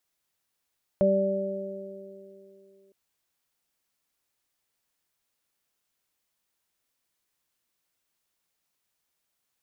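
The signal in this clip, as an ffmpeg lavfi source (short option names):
-f lavfi -i "aevalsrc='0.0668*pow(10,-3*t/2.51)*sin(2*PI*195*t)+0.0398*pow(10,-3*t/3.76)*sin(2*PI*390*t)+0.119*pow(10,-3*t/2.36)*sin(2*PI*585*t)':d=1.91:s=44100"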